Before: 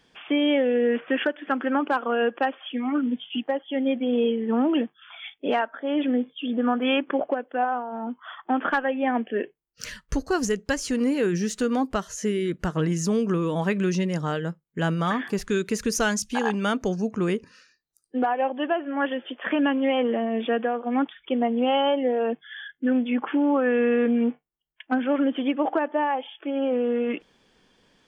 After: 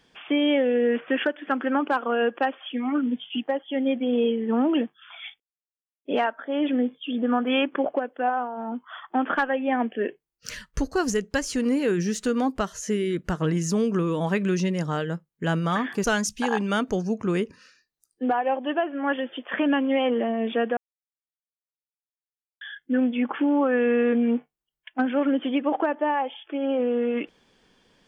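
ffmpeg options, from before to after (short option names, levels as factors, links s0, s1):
-filter_complex "[0:a]asplit=5[s0][s1][s2][s3][s4];[s0]atrim=end=5.4,asetpts=PTS-STARTPTS,afade=t=out:st=5.396:d=0.004:c=hsin,apad=pad_dur=0.65[s5];[s1]atrim=start=5.4:end=15.392,asetpts=PTS-STARTPTS,afade=t=in:d=0.004:c=hsin[s6];[s2]atrim=start=15.968:end=20.7,asetpts=PTS-STARTPTS,afade=t=out:st=4.728:d=0.004:c=hsin[s7];[s3]atrim=start=20.7:end=22.54,asetpts=PTS-STARTPTS,volume=0[s8];[s4]atrim=start=22.54,asetpts=PTS-STARTPTS,afade=t=in:d=0.004:c=hsin[s9];[s5][s6]concat=n=2:v=0:a=1[s10];[s7][s8][s9]concat=n=3:v=0:a=1[s11];[s10][s11]acrossfade=d=0.004:c1=hsin:c2=hsin"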